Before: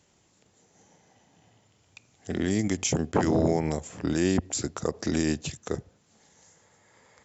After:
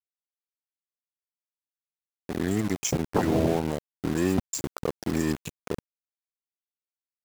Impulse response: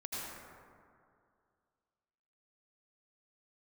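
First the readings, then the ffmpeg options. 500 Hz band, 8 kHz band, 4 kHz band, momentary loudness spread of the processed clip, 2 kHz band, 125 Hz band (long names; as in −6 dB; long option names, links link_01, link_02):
0.0 dB, can't be measured, −2.5 dB, 12 LU, −1.0 dB, −0.5 dB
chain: -af "afftfilt=real='re*gte(hypot(re,im),0.0316)':imag='im*gte(hypot(re,im),0.0316)':win_size=1024:overlap=0.75,aeval=exprs='val(0)*gte(abs(val(0)),0.0335)':channel_layout=same"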